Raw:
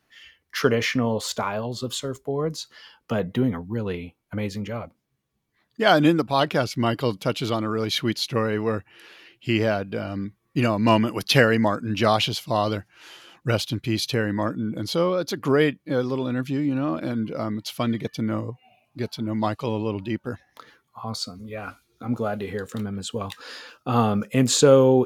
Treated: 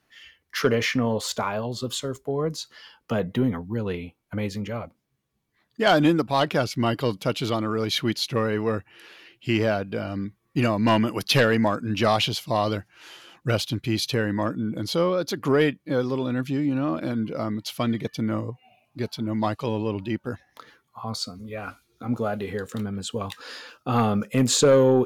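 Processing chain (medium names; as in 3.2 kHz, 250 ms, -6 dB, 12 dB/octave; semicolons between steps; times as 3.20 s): sine folder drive 5 dB, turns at -2 dBFS; trim -9 dB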